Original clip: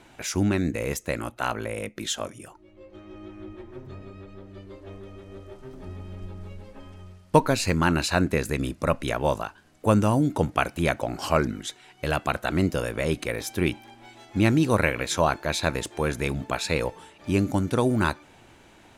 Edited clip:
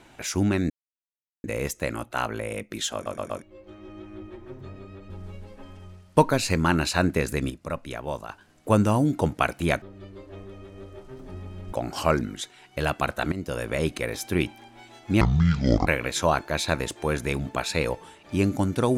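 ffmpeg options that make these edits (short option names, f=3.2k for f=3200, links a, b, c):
-filter_complex "[0:a]asplit=14[a][b][c][d][e][f][g][h][i][j][k][l][m][n];[a]atrim=end=0.7,asetpts=PTS-STARTPTS,afade=t=out:st=0.696:d=0.004:c=hsin,apad=pad_dur=0.74[o];[b]atrim=start=0.7:end=2.322,asetpts=PTS-STARTPTS,afade=t=in:d=0.004:c=hsin[p];[c]atrim=start=2.198:end=2.322[q];[d]atrim=start=2.198:end=2.322[r];[e]atrim=start=2.198:end=2.322[s];[f]atrim=start=2.678:end=4.362[t];[g]atrim=start=6.268:end=8.672[u];[h]atrim=start=8.668:end=9.462,asetpts=PTS-STARTPTS,volume=-7.5dB[v];[i]atrim=start=9.458:end=10.992[w];[j]atrim=start=4.358:end=6.272[x];[k]atrim=start=10.988:end=12.58,asetpts=PTS-STARTPTS,afade=t=out:st=1.588:d=0.004:c=hsin:silence=0.158489[y];[l]atrim=start=12.58:end=14.474,asetpts=PTS-STARTPTS,afade=t=in:d=0.33:silence=0.158489[z];[m]atrim=start=14.47:end=14.82,asetpts=PTS-STARTPTS,asetrate=23373,aresample=44100[aa];[n]atrim=start=14.816[ab];[o][p]concat=n=2:v=0:a=1[ac];[ac][q]acrossfade=d=0.004:c1=hsin:c2=hsin[ad];[ad][r]acrossfade=d=0.004:c1=hsin:c2=hsin[ae];[ae][s]acrossfade=d=0.004:c1=hsin:c2=hsin[af];[af][t]acrossfade=d=0.004:c1=hsin:c2=hsin[ag];[ag][u]acrossfade=d=0.004:c1=hsin:c2=hsin[ah];[ah][v]acrossfade=d=0.004:c1=hsin:c2=hsin[ai];[ai][w]acrossfade=d=0.004:c1=hsin:c2=hsin[aj];[aj][x]acrossfade=d=0.004:c1=hsin:c2=hsin[ak];[y][z]concat=n=2:v=0:a=1[al];[ak][al]acrossfade=d=0.004:c1=hsin:c2=hsin[am];[am][aa]acrossfade=d=0.004:c1=hsin:c2=hsin[an];[an][ab]acrossfade=d=0.004:c1=hsin:c2=hsin"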